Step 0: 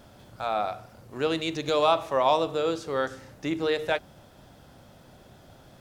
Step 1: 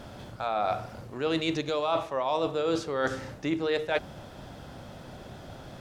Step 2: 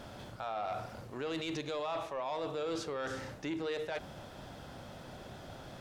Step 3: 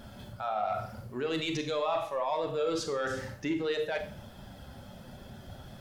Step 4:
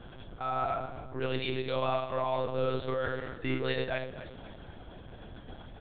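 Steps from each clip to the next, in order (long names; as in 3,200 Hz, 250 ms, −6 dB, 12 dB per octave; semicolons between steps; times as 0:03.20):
high-shelf EQ 9,100 Hz −11 dB; reversed playback; downward compressor 16 to 1, threshold −32 dBFS, peak gain reduction 16 dB; reversed playback; level +8 dB
soft clipping −21.5 dBFS, distortion −17 dB; low-shelf EQ 410 Hz −3.5 dB; brickwall limiter −28 dBFS, peak gain reduction 6.5 dB; level −2 dB
spectral dynamics exaggerated over time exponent 1.5; surface crackle 350 per second −67 dBFS; four-comb reverb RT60 0.44 s, combs from 29 ms, DRR 6.5 dB; level +7.5 dB
repeating echo 260 ms, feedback 44%, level −13.5 dB; one-pitch LPC vocoder at 8 kHz 130 Hz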